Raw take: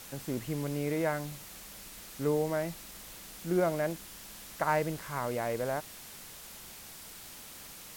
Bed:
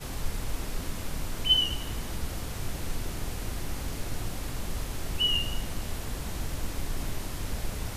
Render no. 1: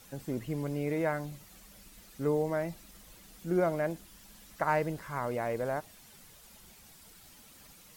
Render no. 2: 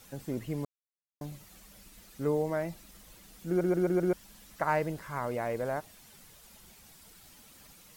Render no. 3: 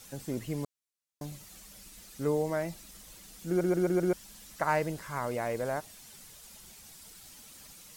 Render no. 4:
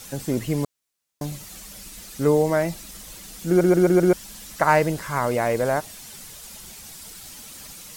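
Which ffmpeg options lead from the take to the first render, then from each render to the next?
-af "afftdn=nr=10:nf=-48"
-filter_complex "[0:a]asplit=8[s0][s1][s2][s3][s4][s5][s6][s7];[s0]atrim=end=0.65,asetpts=PTS-STARTPTS,afade=t=out:st=0.646:d=0.004:c=hsin[s8];[s1]atrim=start=0.65:end=1.21,asetpts=PTS-STARTPTS,volume=0[s9];[s2]atrim=start=1.21:end=3.612,asetpts=PTS-STARTPTS,afade=t=in:d=0.004:c=hsin[s10];[s3]atrim=start=3.478:end=3.612[s11];[s4]atrim=start=3.478:end=3.612[s12];[s5]atrim=start=3.478:end=3.612[s13];[s6]atrim=start=3.478:end=3.612[s14];[s7]atrim=start=4.128[s15];[s8][s9][s10]concat=n=3:v=0:a=1[s16];[s16][s11]acrossfade=d=0.004:c1=hsin:c2=hsin[s17];[s17][s12]acrossfade=d=0.004:c1=hsin:c2=hsin[s18];[s18][s13]acrossfade=d=0.004:c1=hsin:c2=hsin[s19];[s19][s14]acrossfade=d=0.004:c1=hsin:c2=hsin[s20];[s20][s15]acrossfade=d=0.004:c1=hsin:c2=hsin"
-af "equalizer=f=7400:t=o:w=2.1:g=6.5"
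-af "volume=3.35"

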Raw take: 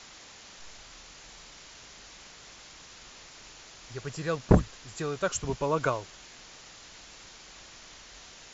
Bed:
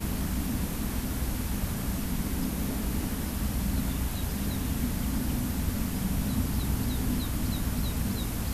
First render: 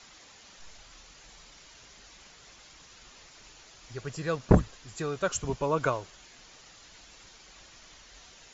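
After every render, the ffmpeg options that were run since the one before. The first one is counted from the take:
-af "afftdn=nr=6:nf=-50"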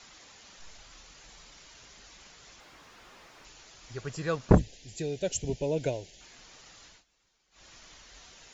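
-filter_complex "[0:a]asettb=1/sr,asplit=3[s0][s1][s2];[s0]atrim=end=2.604[s3];[s1]atrim=start=2.6:end=3.45,asetpts=PTS-STARTPTS,afade=t=in:d=0.004:c=qsin,afade=t=out:st=0.846:d=0.004:c=qsin,asplit=2[s4][s5];[s5]highpass=f=720:p=1,volume=25.1,asoftclip=type=tanh:threshold=0.01[s6];[s4][s6]amix=inputs=2:normalize=0,lowpass=f=1000:p=1,volume=0.501[s7];[s2]atrim=start=3.446[s8];[s3][s7]acrossfade=d=0.004:c1=hsin:c2=qsin[s9];[s9][s8]acrossfade=d=0.004:c1=qsin:c2=hsin,asettb=1/sr,asplit=3[s10][s11][s12];[s10]atrim=end=4.584[s13];[s11]atrim=start=4.58:end=6.21,asetpts=PTS-STARTPTS,afade=t=in:d=0.004:c=qsin,afade=t=out:st=1.626:d=0.004:c=qsin,asuperstop=centerf=1200:order=4:qfactor=0.83[s14];[s12]atrim=start=6.206[s15];[s13][s14]acrossfade=d=0.004:c1=hsin:c2=qsin[s16];[s16][s15]acrossfade=d=0.004:c1=qsin:c2=hsin,asplit=3[s17][s18][s19];[s17]atrim=end=7.04,asetpts=PTS-STARTPTS,afade=t=out:st=6.81:d=0.23:c=qsin:silence=0.0944061[s20];[s18]atrim=start=7.04:end=7.51,asetpts=PTS-STARTPTS,volume=0.0944[s21];[s19]atrim=start=7.51,asetpts=PTS-STARTPTS,afade=t=in:d=0.23:c=qsin:silence=0.0944061[s22];[s20][s21][s22]concat=n=3:v=0:a=1"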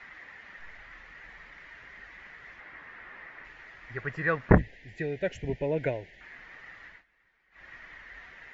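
-af "lowpass=f=1900:t=q:w=6.9"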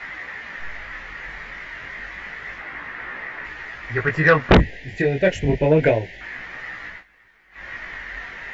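-af "flanger=delay=16:depth=6.2:speed=0.3,aeval=exprs='0.501*sin(PI/2*4.47*val(0)/0.501)':c=same"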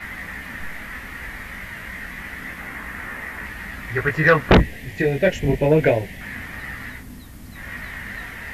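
-filter_complex "[1:a]volume=0.299[s0];[0:a][s0]amix=inputs=2:normalize=0"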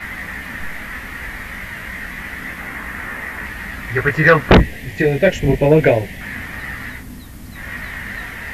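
-af "volume=1.68,alimiter=limit=0.794:level=0:latency=1"

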